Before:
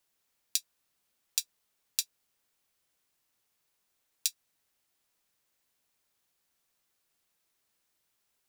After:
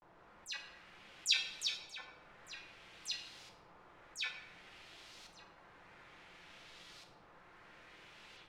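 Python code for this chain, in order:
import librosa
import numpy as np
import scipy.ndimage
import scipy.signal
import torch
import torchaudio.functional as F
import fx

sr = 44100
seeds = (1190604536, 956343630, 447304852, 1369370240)

p1 = fx.spec_delay(x, sr, highs='early', ms=100)
p2 = fx.over_compress(p1, sr, threshold_db=-58.0, ratio=-1.0)
p3 = p1 + (p2 * librosa.db_to_amplitude(0.0))
p4 = fx.hum_notches(p3, sr, base_hz=60, count=2)
p5 = p4 + fx.echo_single(p4, sr, ms=1170, db=-10.5, dry=0)
p6 = fx.filter_lfo_lowpass(p5, sr, shape='saw_up', hz=0.57, low_hz=940.0, high_hz=4700.0, q=1.3)
p7 = fx.vibrato(p6, sr, rate_hz=0.42, depth_cents=88.0)
p8 = fx.room_shoebox(p7, sr, seeds[0], volume_m3=410.0, walls='mixed', distance_m=0.84)
y = p8 * librosa.db_to_amplitude(7.0)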